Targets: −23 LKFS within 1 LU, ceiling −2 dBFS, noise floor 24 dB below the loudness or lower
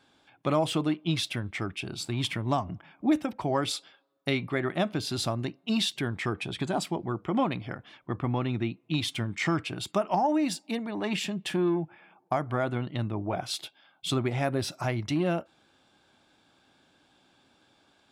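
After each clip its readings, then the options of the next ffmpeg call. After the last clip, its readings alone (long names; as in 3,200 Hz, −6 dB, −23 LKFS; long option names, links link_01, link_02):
integrated loudness −30.0 LKFS; sample peak −13.5 dBFS; target loudness −23.0 LKFS
→ -af "volume=7dB"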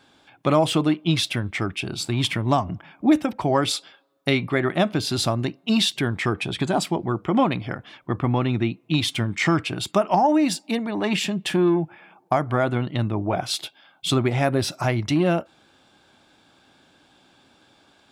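integrated loudness −23.0 LKFS; sample peak −6.5 dBFS; background noise floor −59 dBFS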